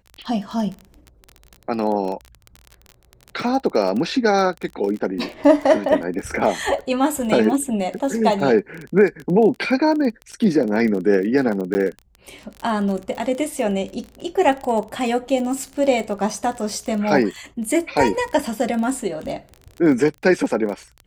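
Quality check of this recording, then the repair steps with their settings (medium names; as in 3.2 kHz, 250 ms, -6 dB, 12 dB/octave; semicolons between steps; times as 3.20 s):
crackle 26 per s -26 dBFS
11.74–11.75 s: dropout 10 ms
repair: de-click; interpolate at 11.74 s, 10 ms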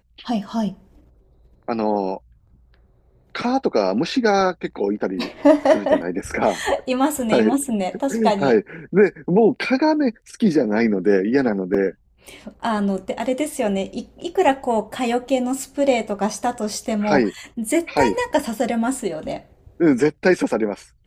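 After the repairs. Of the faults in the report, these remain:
nothing left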